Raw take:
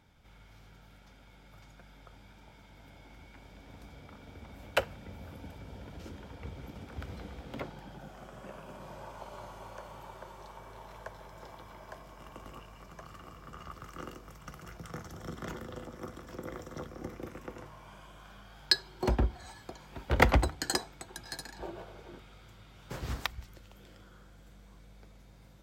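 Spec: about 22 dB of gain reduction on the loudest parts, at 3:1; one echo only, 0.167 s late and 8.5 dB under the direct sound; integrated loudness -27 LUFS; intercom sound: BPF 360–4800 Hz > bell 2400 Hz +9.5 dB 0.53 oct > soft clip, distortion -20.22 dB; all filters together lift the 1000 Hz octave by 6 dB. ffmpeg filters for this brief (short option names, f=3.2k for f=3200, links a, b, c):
-af "equalizer=f=1k:t=o:g=7.5,acompressor=threshold=-46dB:ratio=3,highpass=360,lowpass=4.8k,equalizer=f=2.4k:t=o:w=0.53:g=9.5,aecho=1:1:167:0.376,asoftclip=threshold=-27.5dB,volume=22.5dB"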